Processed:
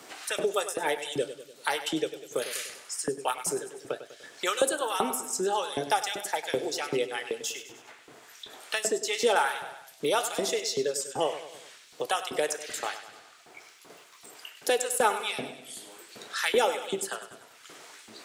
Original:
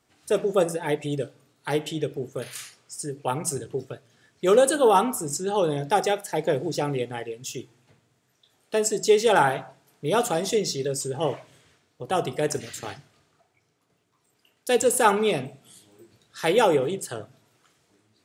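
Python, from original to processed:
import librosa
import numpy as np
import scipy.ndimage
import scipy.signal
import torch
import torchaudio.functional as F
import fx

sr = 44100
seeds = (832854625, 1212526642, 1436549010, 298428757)

y = fx.filter_lfo_highpass(x, sr, shape='saw_up', hz=2.6, low_hz=230.0, high_hz=3100.0, q=0.87)
y = fx.echo_feedback(y, sr, ms=98, feedback_pct=41, wet_db=-13)
y = fx.band_squash(y, sr, depth_pct=70)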